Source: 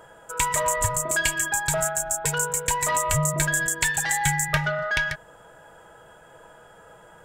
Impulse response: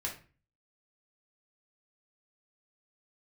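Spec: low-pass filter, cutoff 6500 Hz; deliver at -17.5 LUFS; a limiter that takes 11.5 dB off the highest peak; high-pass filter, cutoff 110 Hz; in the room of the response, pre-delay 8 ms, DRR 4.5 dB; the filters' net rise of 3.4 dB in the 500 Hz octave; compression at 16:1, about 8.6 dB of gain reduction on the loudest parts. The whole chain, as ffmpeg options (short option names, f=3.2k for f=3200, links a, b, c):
-filter_complex "[0:a]highpass=110,lowpass=6.5k,equalizer=f=500:t=o:g=4.5,acompressor=threshold=-29dB:ratio=16,alimiter=level_in=4dB:limit=-24dB:level=0:latency=1,volume=-4dB,asplit=2[a][b];[1:a]atrim=start_sample=2205,adelay=8[c];[b][c]afir=irnorm=-1:irlink=0,volume=-7dB[d];[a][d]amix=inputs=2:normalize=0,volume=16dB"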